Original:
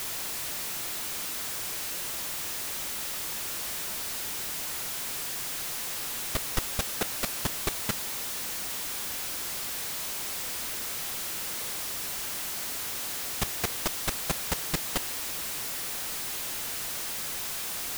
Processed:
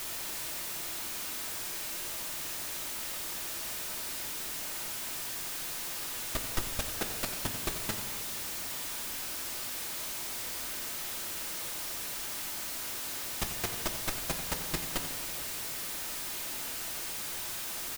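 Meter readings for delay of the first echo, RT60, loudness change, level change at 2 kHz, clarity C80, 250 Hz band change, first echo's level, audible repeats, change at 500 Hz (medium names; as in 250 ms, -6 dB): 90 ms, 2.1 s, -3.5 dB, -3.0 dB, 8.5 dB, -2.5 dB, -12.5 dB, 1, -3.0 dB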